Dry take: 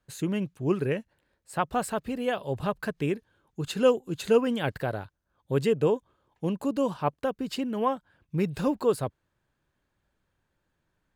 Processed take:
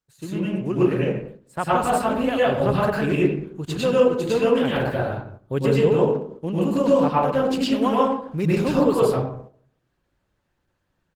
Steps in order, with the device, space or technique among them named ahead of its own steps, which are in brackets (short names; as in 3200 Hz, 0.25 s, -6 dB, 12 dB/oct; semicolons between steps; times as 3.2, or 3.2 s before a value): 7.6–8.75 bell 7100 Hz +11.5 dB -> +2.5 dB 2.4 oct; speakerphone in a meeting room (reverb RT60 0.70 s, pre-delay 95 ms, DRR -7 dB; speakerphone echo 0.12 s, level -17 dB; AGC gain up to 10.5 dB; gate -34 dBFS, range -8 dB; gain -5 dB; Opus 16 kbps 48000 Hz)